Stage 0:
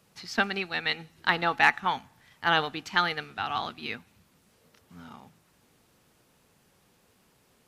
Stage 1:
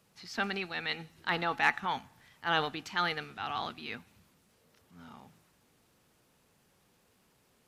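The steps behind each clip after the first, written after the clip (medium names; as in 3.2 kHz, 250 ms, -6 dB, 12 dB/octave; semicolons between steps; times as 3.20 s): transient shaper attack -5 dB, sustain +3 dB; trim -4 dB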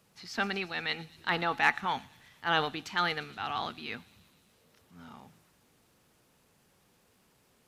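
feedback echo behind a high-pass 117 ms, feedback 72%, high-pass 5 kHz, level -14 dB; trim +1.5 dB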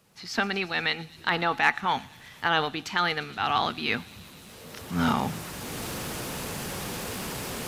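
recorder AGC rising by 13 dB/s; trim +3 dB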